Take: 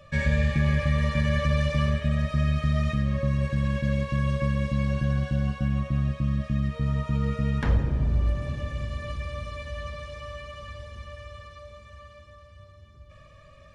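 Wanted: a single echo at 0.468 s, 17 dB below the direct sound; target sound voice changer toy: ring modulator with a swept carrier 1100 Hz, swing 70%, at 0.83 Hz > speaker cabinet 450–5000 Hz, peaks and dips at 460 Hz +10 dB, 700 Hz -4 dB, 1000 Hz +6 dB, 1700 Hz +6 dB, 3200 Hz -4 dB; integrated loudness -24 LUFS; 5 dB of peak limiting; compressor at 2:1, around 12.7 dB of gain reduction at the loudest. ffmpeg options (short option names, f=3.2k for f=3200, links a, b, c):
-af "acompressor=threshold=-42dB:ratio=2,alimiter=level_in=5dB:limit=-24dB:level=0:latency=1,volume=-5dB,aecho=1:1:468:0.141,aeval=exprs='val(0)*sin(2*PI*1100*n/s+1100*0.7/0.83*sin(2*PI*0.83*n/s))':c=same,highpass=450,equalizer=f=460:t=q:w=4:g=10,equalizer=f=700:t=q:w=4:g=-4,equalizer=f=1k:t=q:w=4:g=6,equalizer=f=1.7k:t=q:w=4:g=6,equalizer=f=3.2k:t=q:w=4:g=-4,lowpass=f=5k:w=0.5412,lowpass=f=5k:w=1.3066,volume=13.5dB"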